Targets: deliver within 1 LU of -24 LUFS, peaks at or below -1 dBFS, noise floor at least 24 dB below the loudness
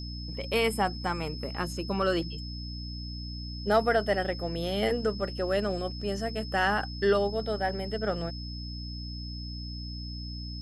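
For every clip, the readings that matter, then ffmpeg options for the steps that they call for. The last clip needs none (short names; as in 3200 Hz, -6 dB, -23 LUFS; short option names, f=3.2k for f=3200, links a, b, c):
hum 60 Hz; harmonics up to 300 Hz; hum level -36 dBFS; steady tone 5200 Hz; tone level -42 dBFS; loudness -30.5 LUFS; peak -12.5 dBFS; loudness target -24.0 LUFS
-> -af "bandreject=f=60:t=h:w=6,bandreject=f=120:t=h:w=6,bandreject=f=180:t=h:w=6,bandreject=f=240:t=h:w=6,bandreject=f=300:t=h:w=6"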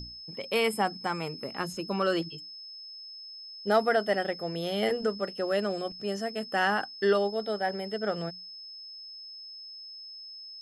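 hum none; steady tone 5200 Hz; tone level -42 dBFS
-> -af "bandreject=f=5.2k:w=30"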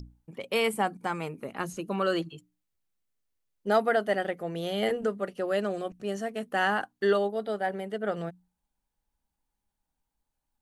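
steady tone none; loudness -29.5 LUFS; peak -13.0 dBFS; loudness target -24.0 LUFS
-> -af "volume=5.5dB"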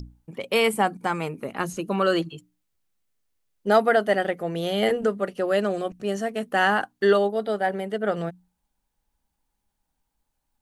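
loudness -24.0 LUFS; peak -7.5 dBFS; noise floor -79 dBFS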